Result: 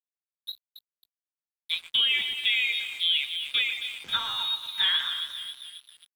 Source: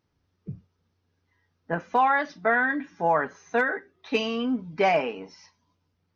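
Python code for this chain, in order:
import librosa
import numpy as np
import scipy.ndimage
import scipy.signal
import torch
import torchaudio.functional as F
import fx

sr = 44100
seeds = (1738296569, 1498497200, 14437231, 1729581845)

y = fx.low_shelf(x, sr, hz=260.0, db=-5.0)
y = fx.freq_invert(y, sr, carrier_hz=4000)
y = fx.echo_split(y, sr, split_hz=2600.0, low_ms=120, high_ms=270, feedback_pct=52, wet_db=-9.5)
y = np.sign(y) * np.maximum(np.abs(y) - 10.0 ** (-45.5 / 20.0), 0.0)
y = fx.band_squash(y, sr, depth_pct=40)
y = F.gain(torch.from_numpy(y), -1.5).numpy()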